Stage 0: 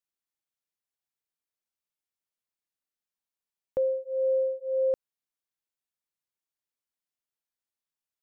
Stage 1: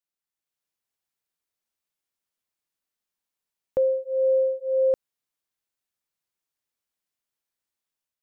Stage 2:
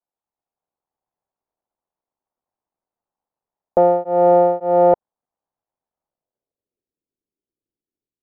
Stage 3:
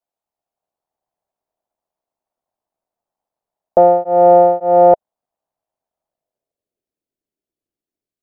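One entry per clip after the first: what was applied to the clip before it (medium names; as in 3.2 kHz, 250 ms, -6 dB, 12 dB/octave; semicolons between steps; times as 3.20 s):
level rider gain up to 6 dB; trim -1.5 dB
cycle switcher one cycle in 3, muted; low-pass sweep 830 Hz -> 360 Hz, 5.98–6.93 s; trim +6 dB
peaking EQ 650 Hz +8 dB 0.37 oct; trim +1 dB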